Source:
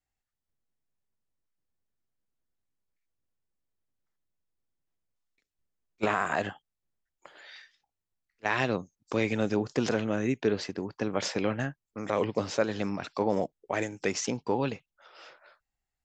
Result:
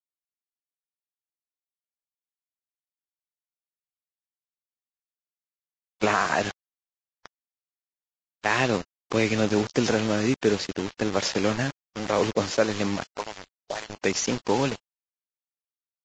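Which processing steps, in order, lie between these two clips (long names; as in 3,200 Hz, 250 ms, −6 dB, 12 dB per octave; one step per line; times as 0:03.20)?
0:13.04–0:13.90: envelope filter 360–1,900 Hz, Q 2.1, up, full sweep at −23 dBFS
bit reduction 6 bits
0:13.42–0:13.75: gain on a spectral selection 690–3,000 Hz −7 dB
level +4.5 dB
Ogg Vorbis 32 kbit/s 16,000 Hz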